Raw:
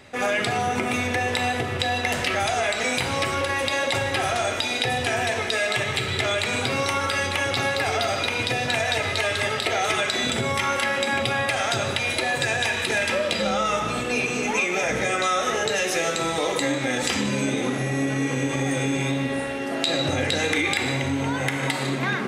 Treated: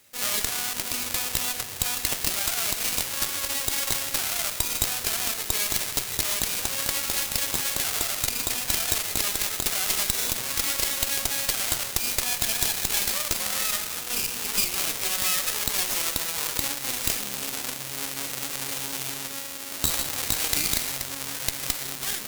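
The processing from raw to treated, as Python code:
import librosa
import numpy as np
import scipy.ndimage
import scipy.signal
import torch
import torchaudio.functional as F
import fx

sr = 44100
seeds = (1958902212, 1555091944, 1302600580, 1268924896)

y = fx.halfwave_hold(x, sr)
y = librosa.effects.preemphasis(y, coef=0.9, zi=[0.0])
y = fx.cheby_harmonics(y, sr, harmonics=(8,), levels_db=(-7,), full_scale_db=1.5)
y = y * 10.0 ** (-5.0 / 20.0)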